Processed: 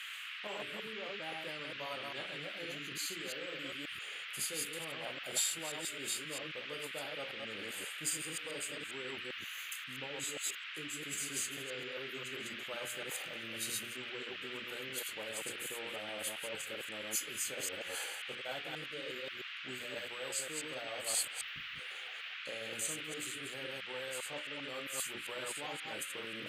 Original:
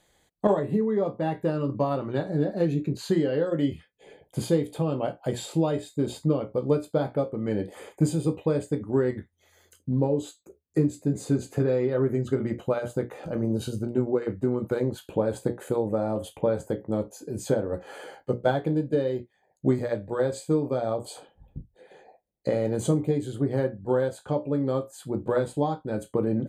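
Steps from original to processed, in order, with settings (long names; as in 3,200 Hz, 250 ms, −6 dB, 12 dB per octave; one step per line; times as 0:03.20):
delay that plays each chunk backwards 133 ms, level −2.5 dB
low-shelf EQ 71 Hz −11 dB
reversed playback
downward compressor 5 to 1, threshold −33 dBFS, peak gain reduction 16 dB
reversed playback
noise in a band 1,200–3,100 Hz −47 dBFS
first-order pre-emphasis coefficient 0.97
level +11.5 dB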